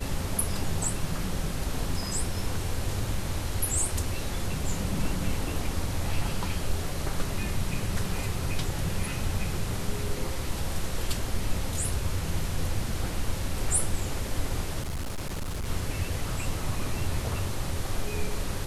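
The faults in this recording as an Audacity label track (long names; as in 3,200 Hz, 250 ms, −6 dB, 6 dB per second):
14.810000	15.680000	clipping −28.5 dBFS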